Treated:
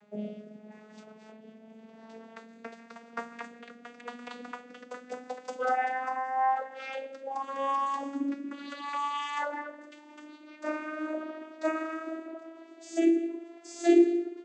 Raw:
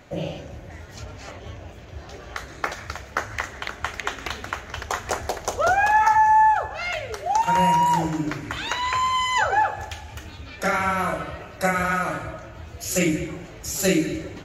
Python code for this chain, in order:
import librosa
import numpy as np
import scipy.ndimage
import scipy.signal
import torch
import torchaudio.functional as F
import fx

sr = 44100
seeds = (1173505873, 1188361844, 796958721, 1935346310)

y = fx.vocoder_glide(x, sr, note=56, semitones=9)
y = fx.rotary(y, sr, hz=0.85)
y = F.gain(torch.from_numpy(y), -5.0).numpy()